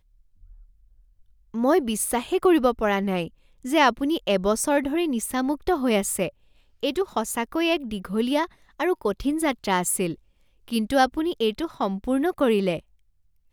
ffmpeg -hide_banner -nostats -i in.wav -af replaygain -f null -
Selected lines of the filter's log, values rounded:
track_gain = +4.3 dB
track_peak = 0.329